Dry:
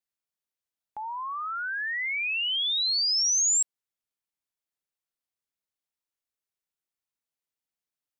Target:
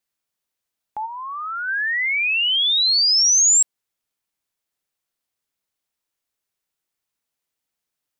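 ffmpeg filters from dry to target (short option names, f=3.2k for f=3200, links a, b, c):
-filter_complex "[0:a]asplit=3[a][b][c];[a]afade=t=out:st=1.05:d=0.02[d];[b]agate=range=-33dB:threshold=-29dB:ratio=3:detection=peak,afade=t=in:st=1.05:d=0.02,afade=t=out:st=1.67:d=0.02[e];[c]afade=t=in:st=1.67:d=0.02[f];[d][e][f]amix=inputs=3:normalize=0,volume=8.5dB"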